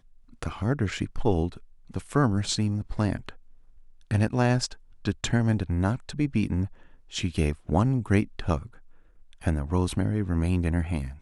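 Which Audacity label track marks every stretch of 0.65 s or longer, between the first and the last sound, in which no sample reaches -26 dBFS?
3.290000	4.110000	silence
8.570000	9.470000	silence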